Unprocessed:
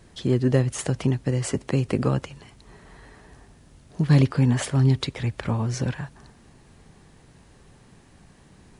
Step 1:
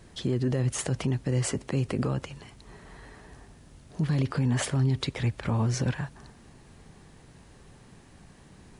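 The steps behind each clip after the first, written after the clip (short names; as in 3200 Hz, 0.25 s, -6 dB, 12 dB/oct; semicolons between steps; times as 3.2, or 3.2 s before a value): limiter -18.5 dBFS, peak gain reduction 11.5 dB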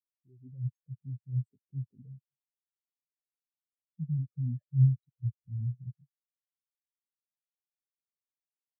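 AGC gain up to 4 dB; spectral expander 4:1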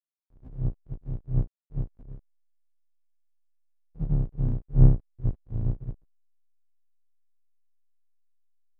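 octaver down 2 oct, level +3 dB; reverse echo 56 ms -17.5 dB; backlash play -44 dBFS; gain +2.5 dB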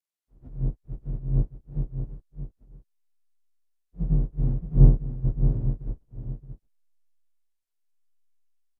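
inharmonic rescaling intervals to 91%; on a send: echo 0.622 s -8 dB; on the sum: gain +3 dB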